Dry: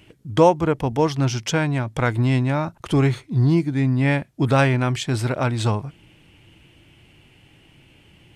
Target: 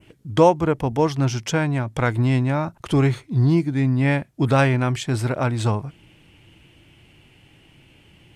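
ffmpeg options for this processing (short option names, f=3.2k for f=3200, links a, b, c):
-af "adynamicequalizer=threshold=0.00891:dfrequency=3800:dqfactor=0.91:tfrequency=3800:tqfactor=0.91:attack=5:release=100:ratio=0.375:range=2:mode=cutabove:tftype=bell"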